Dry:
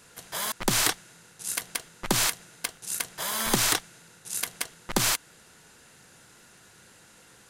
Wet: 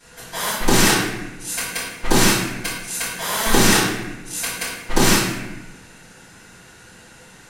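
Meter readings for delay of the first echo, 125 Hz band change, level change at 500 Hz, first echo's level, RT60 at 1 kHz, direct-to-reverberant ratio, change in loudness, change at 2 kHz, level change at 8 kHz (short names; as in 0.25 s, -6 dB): none, +13.0 dB, +13.0 dB, none, 0.95 s, -13.5 dB, +8.0 dB, +10.5 dB, +6.5 dB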